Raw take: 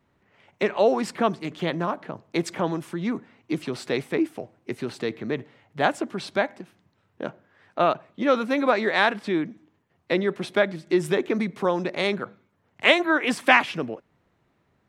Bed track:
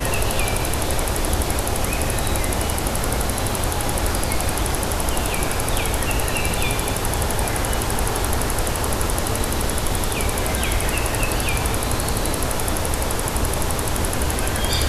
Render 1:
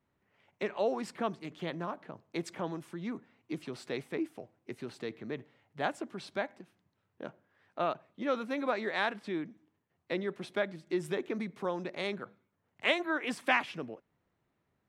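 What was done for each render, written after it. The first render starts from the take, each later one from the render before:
level −11 dB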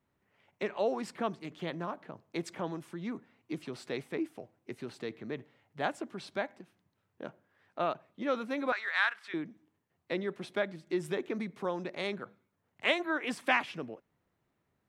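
0:08.72–0:09.34: high-pass with resonance 1,400 Hz, resonance Q 2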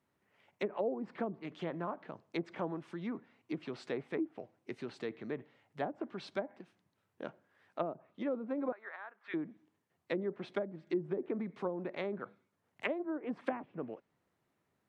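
treble cut that deepens with the level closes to 460 Hz, closed at −29 dBFS
low-shelf EQ 84 Hz −11.5 dB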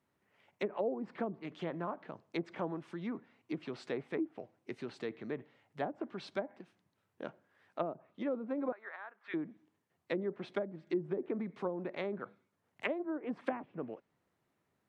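no processing that can be heard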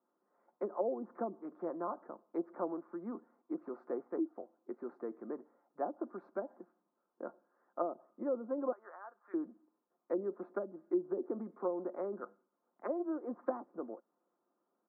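elliptic band-pass filter 240–1,300 Hz, stop band 40 dB
comb filter 5.7 ms, depth 36%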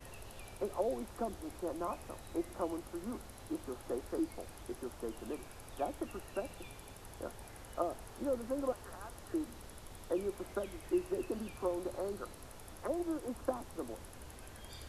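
mix in bed track −29.5 dB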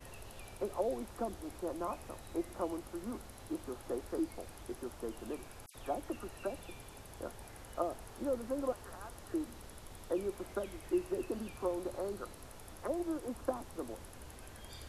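0:05.66–0:07.08: all-pass dispersion lows, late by 87 ms, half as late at 3,000 Hz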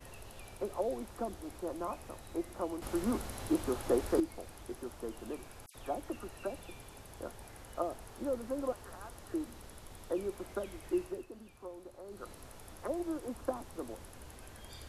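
0:02.82–0:04.20: clip gain +9 dB
0:11.01–0:12.31: duck −11 dB, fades 0.25 s

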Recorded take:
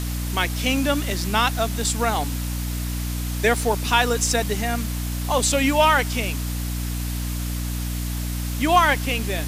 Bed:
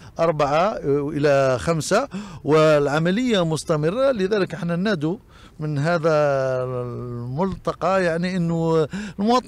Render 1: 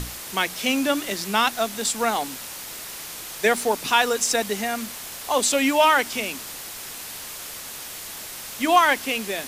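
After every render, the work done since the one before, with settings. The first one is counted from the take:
mains-hum notches 60/120/180/240/300 Hz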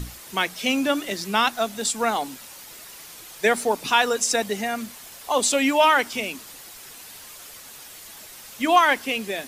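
broadband denoise 8 dB, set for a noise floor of −36 dBFS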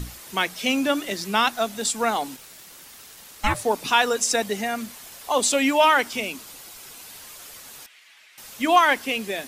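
0:02.36–0:03.63: ring modulation 1,500 Hz → 340 Hz
0:06.21–0:07.11: notch filter 1,800 Hz
0:07.86–0:08.38: resonant band-pass 2,300 Hz, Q 2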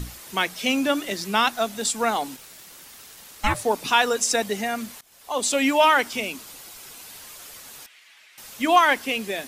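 0:05.01–0:05.64: fade in, from −21.5 dB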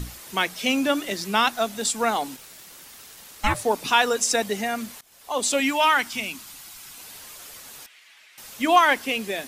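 0:05.60–0:06.98: parametric band 470 Hz −11.5 dB 0.94 octaves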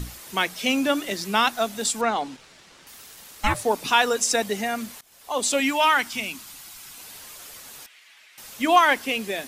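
0:02.01–0:02.87: high-frequency loss of the air 100 metres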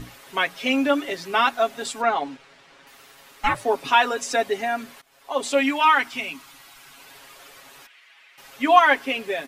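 bass and treble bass −7 dB, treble −12 dB
comb filter 7.3 ms, depth 77%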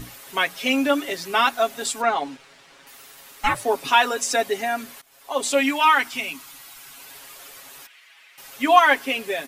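high-shelf EQ 6,400 Hz +11 dB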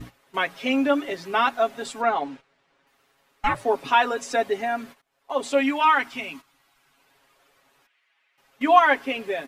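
low-pass filter 1,700 Hz 6 dB per octave
noise gate −41 dBFS, range −13 dB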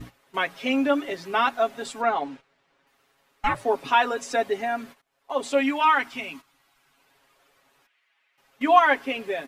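level −1 dB

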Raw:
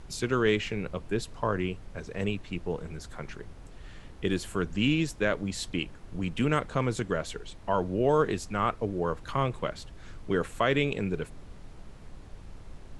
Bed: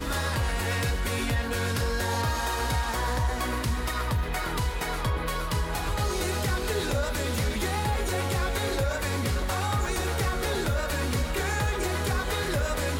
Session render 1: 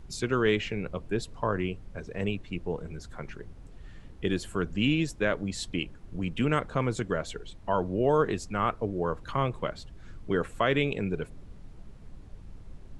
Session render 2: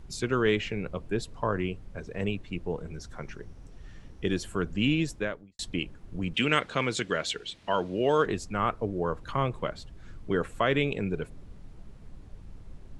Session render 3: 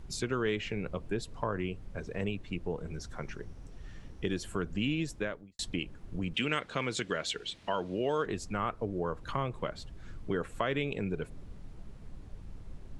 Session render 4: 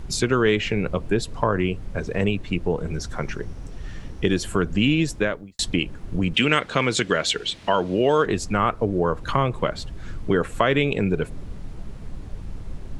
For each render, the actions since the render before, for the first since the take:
broadband denoise 7 dB, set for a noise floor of −47 dBFS
0:02.94–0:04.43: parametric band 5,700 Hz +9 dB 0.2 octaves; 0:05.16–0:05.59: fade out quadratic; 0:06.34–0:08.26: meter weighting curve D
downward compressor 2 to 1, threshold −32 dBFS, peak gain reduction 8 dB
level +12 dB

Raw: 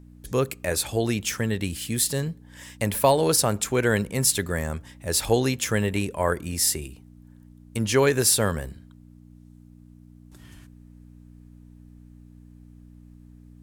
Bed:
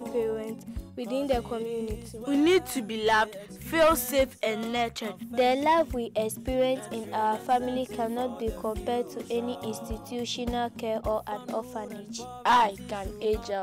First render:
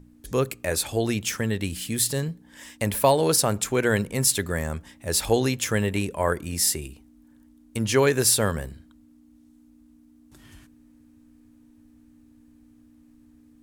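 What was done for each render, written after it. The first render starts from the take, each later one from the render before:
hum removal 60 Hz, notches 3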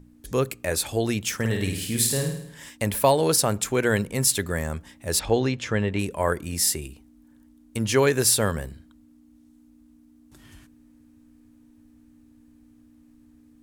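0:01.35–0:02.70: flutter between parallel walls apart 9 metres, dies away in 0.69 s
0:05.19–0:05.99: high-frequency loss of the air 140 metres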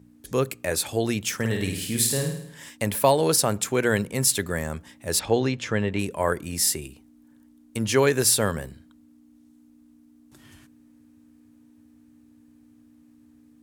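high-pass filter 90 Hz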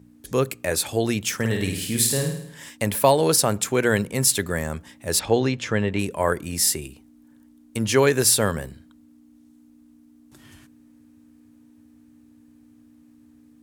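level +2 dB

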